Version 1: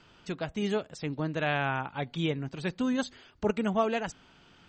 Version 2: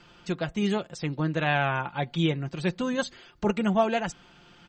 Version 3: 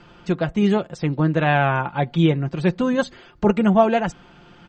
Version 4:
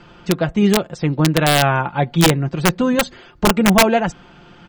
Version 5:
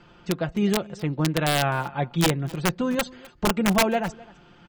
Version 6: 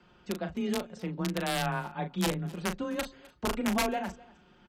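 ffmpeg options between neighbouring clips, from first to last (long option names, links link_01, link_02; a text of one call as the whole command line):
ffmpeg -i in.wav -af "aecho=1:1:5.7:0.47,volume=3dB" out.wav
ffmpeg -i in.wav -af "highshelf=frequency=2400:gain=-11,volume=8.5dB" out.wav
ffmpeg -i in.wav -af "aeval=exprs='(mod(2.66*val(0)+1,2)-1)/2.66':channel_layout=same,volume=3.5dB" out.wav
ffmpeg -i in.wav -af "aecho=1:1:256:0.0794,volume=-8dB" out.wav
ffmpeg -i in.wav -filter_complex "[0:a]afreqshift=21,asplit=2[link_01][link_02];[link_02]adelay=38,volume=-8.5dB[link_03];[link_01][link_03]amix=inputs=2:normalize=0,aresample=32000,aresample=44100,volume=-8.5dB" out.wav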